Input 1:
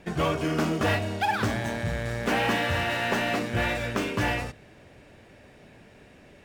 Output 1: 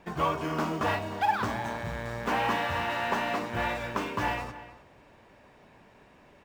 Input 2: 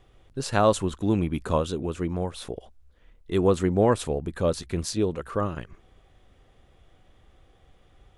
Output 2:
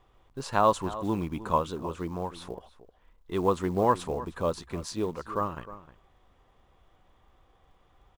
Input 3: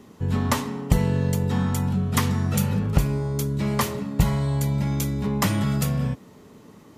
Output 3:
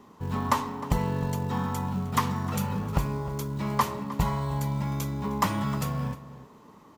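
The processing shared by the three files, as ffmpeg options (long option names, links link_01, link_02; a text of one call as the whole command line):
ffmpeg -i in.wav -filter_complex "[0:a]acrusher=bits=7:mode=log:mix=0:aa=0.000001,equalizer=frequency=100:width_type=o:width=0.67:gain=-3,equalizer=frequency=1000:width_type=o:width=0.67:gain=11,equalizer=frequency=10000:width_type=o:width=0.67:gain=-4,asplit=2[link_01][link_02];[link_02]adelay=309,volume=-15dB,highshelf=frequency=4000:gain=-6.95[link_03];[link_01][link_03]amix=inputs=2:normalize=0,volume=-6dB" out.wav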